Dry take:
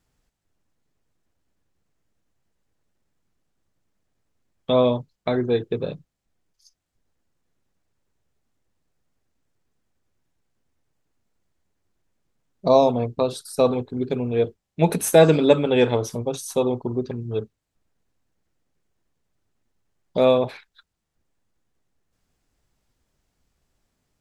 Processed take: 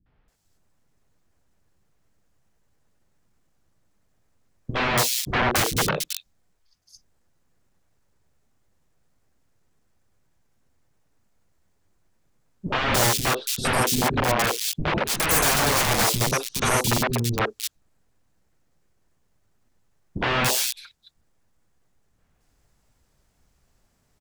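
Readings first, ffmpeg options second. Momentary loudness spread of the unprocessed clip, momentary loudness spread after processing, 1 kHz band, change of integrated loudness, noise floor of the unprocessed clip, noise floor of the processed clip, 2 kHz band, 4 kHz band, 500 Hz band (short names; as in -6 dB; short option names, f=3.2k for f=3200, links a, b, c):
12 LU, 10 LU, +3.5 dB, -0.5 dB, -79 dBFS, -68 dBFS, +11.0 dB, +9.0 dB, -9.0 dB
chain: -filter_complex "[0:a]acontrast=64,aeval=exprs='(mod(5.62*val(0)+1,2)-1)/5.62':c=same,acrossover=split=310|3200[a][b][c];[b]adelay=60[d];[c]adelay=280[e];[a][d][e]amix=inputs=3:normalize=0"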